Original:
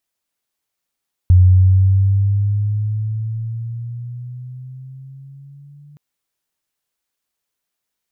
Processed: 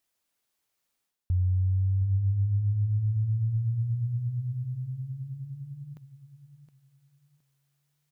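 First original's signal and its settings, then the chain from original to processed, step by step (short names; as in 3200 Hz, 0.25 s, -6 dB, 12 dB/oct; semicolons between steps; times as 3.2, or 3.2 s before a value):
gliding synth tone sine, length 4.67 s, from 90.1 Hz, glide +8.5 st, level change -35 dB, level -5 dB
reverse; compressor 6:1, threshold -25 dBFS; reverse; feedback echo 0.717 s, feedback 26%, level -12 dB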